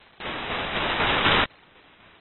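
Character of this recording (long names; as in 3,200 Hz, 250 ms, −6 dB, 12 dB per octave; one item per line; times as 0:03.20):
a quantiser's noise floor 10 bits, dither triangular
tremolo saw down 4 Hz, depth 45%
aliases and images of a low sample rate 6,600 Hz, jitter 0%
AAC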